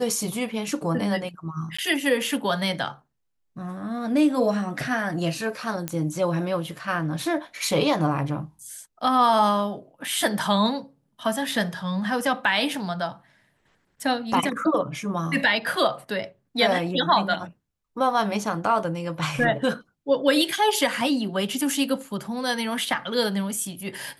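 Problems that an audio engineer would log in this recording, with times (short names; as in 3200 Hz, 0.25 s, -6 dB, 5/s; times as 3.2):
1.77–1.78 gap 15 ms
5.88 pop -12 dBFS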